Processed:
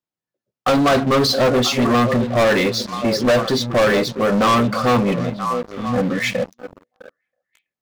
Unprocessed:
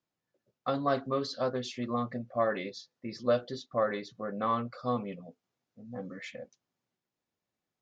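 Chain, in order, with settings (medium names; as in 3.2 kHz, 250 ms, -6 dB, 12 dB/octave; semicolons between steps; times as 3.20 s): repeats whose band climbs or falls 327 ms, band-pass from 150 Hz, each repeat 1.4 oct, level -8.5 dB; waveshaping leveller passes 5; trim +4.5 dB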